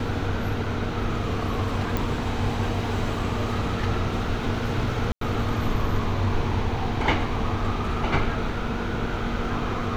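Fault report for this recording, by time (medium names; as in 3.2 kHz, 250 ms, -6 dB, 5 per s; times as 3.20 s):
1.97 s: pop
5.12–5.21 s: dropout 93 ms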